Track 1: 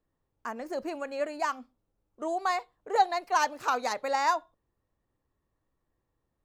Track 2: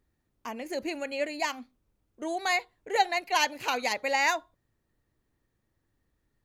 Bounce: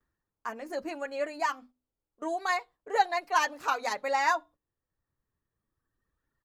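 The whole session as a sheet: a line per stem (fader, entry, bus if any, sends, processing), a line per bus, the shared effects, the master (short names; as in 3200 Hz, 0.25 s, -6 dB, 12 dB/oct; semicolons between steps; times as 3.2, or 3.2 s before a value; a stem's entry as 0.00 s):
-2.5 dB, 0.00 s, no send, notches 50/100/150/200/250/300 Hz
+3.0 dB, 7.7 ms, polarity flipped, no send, reverb removal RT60 1.6 s; band shelf 1300 Hz +10 dB 1.1 oct; auto duck -12 dB, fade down 0.45 s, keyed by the first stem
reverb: off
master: gate -52 dBFS, range -8 dB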